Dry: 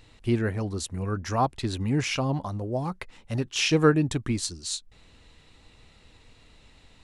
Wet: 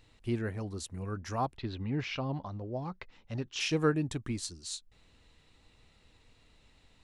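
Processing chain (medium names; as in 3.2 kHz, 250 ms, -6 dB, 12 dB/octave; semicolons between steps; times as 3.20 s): 1.56–3.59 s: low-pass 4 kHz -> 6.6 kHz 24 dB/octave; trim -8 dB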